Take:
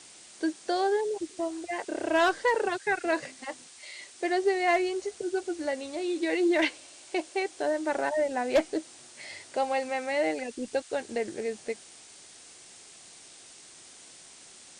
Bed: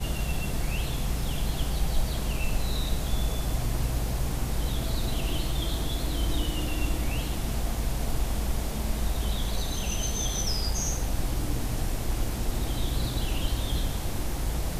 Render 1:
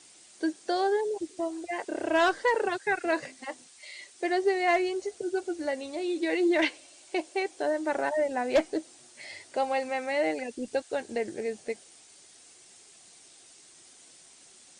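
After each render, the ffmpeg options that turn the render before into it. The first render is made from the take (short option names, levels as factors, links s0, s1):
-af "afftdn=nr=6:nf=-51"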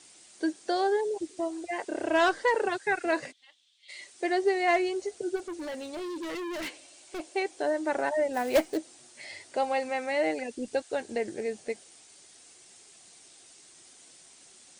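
-filter_complex "[0:a]asplit=3[s0][s1][s2];[s0]afade=t=out:st=3.31:d=0.02[s3];[s1]bandpass=f=3400:t=q:w=6.6,afade=t=in:st=3.31:d=0.02,afade=t=out:st=3.88:d=0.02[s4];[s2]afade=t=in:st=3.88:d=0.02[s5];[s3][s4][s5]amix=inputs=3:normalize=0,asplit=3[s6][s7][s8];[s6]afade=t=out:st=5.35:d=0.02[s9];[s7]volume=50.1,asoftclip=hard,volume=0.02,afade=t=in:st=5.35:d=0.02,afade=t=out:st=7.19:d=0.02[s10];[s8]afade=t=in:st=7.19:d=0.02[s11];[s9][s10][s11]amix=inputs=3:normalize=0,asplit=3[s12][s13][s14];[s12]afade=t=out:st=8.33:d=0.02[s15];[s13]acrusher=bits=4:mode=log:mix=0:aa=0.000001,afade=t=in:st=8.33:d=0.02,afade=t=out:st=8.76:d=0.02[s16];[s14]afade=t=in:st=8.76:d=0.02[s17];[s15][s16][s17]amix=inputs=3:normalize=0"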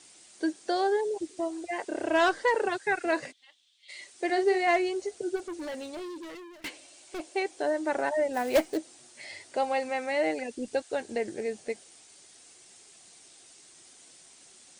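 -filter_complex "[0:a]asettb=1/sr,asplit=3[s0][s1][s2];[s0]atrim=end=4.254[s3];[s1]atrim=start=4.25:end=4.67,asetpts=PTS-STARTPTS,afade=t=in:d=0.004:c=qsin,afade=t=out:st=0.416:d=0.004:c=qsin,asplit=2[s4][s5];[s5]adelay=43,volume=0.398[s6];[s4][s6]amix=inputs=2:normalize=0,atrim=end_sample=18522[s7];[s2]atrim=start=4.666[s8];[s3][s7]acrossfade=d=0.004:c1=hsin:c2=qsin[s9];[s9][s8]acrossfade=d=0.004:c1=qsin:c2=hsin,asplit=2[s10][s11];[s10]atrim=end=6.64,asetpts=PTS-STARTPTS,afade=t=out:st=5.83:d=0.81:silence=0.0707946[s12];[s11]atrim=start=6.64,asetpts=PTS-STARTPTS,afade=t=in:d=0.004:c=hsin:silence=0.0707946[s13];[s12][s13]concat=n=2:v=0:a=1"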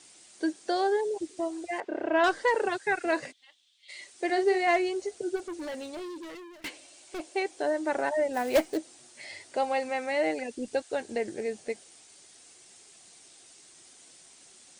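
-filter_complex "[0:a]asettb=1/sr,asplit=3[s0][s1][s2];[s0]atrim=end=1.804[s3];[s1]atrim=start=1.8:end=2.24,asetpts=PTS-STARTPTS,afade=t=in:d=0.004:c=qsin,afade=t=out:st=0.436:d=0.004:c=qsin,highpass=140,lowpass=2400[s4];[s2]atrim=start=2.236[s5];[s3][s4]acrossfade=d=0.004:c1=hsin:c2=qsin[s6];[s6][s5]acrossfade=d=0.004:c1=qsin:c2=hsin"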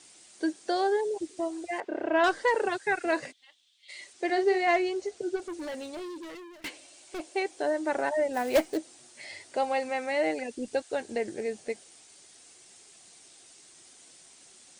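-filter_complex "[0:a]asettb=1/sr,asplit=3[s0][s1][s2];[s0]atrim=end=4.134[s3];[s1]atrim=start=4.13:end=5.42,asetpts=PTS-STARTPTS,afade=t=in:d=0.004:c=qsin,afade=t=out:st=1.286:d=0.004:c=qsin,lowpass=7500[s4];[s2]atrim=start=5.416[s5];[s3][s4]acrossfade=d=0.004:c1=hsin:c2=qsin[s6];[s6][s5]acrossfade=d=0.004:c1=qsin:c2=hsin"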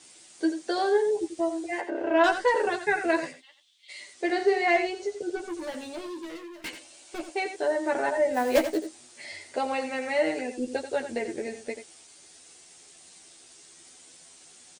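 -filter_complex "[0:a]asplit=2[s0][s1];[s1]adelay=12,volume=0.708[s2];[s0][s2]amix=inputs=2:normalize=0,asplit=2[s3][s4];[s4]aecho=0:1:87:0.316[s5];[s3][s5]amix=inputs=2:normalize=0"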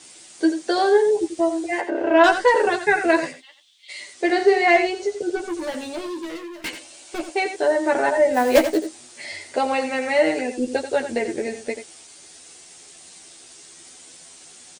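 -af "volume=2.24"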